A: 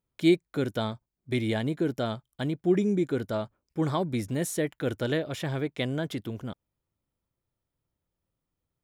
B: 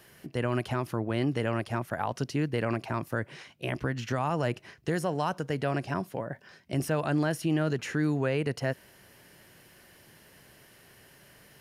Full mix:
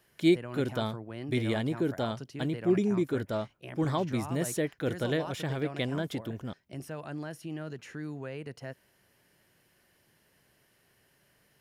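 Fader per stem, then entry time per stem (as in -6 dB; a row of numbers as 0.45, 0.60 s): -2.0, -11.5 dB; 0.00, 0.00 s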